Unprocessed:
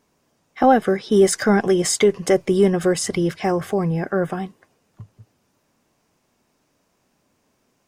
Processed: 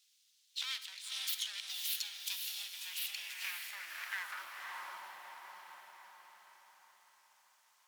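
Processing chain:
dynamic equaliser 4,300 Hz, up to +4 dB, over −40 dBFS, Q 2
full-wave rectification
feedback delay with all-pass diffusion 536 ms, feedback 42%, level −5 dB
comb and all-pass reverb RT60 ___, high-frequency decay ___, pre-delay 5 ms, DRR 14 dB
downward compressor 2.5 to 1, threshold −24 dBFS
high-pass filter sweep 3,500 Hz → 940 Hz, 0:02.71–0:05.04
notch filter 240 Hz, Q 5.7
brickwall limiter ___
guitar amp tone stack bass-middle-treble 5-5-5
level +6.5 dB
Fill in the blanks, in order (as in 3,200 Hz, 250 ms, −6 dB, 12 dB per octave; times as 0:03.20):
0.92 s, 0.6×, −23 dBFS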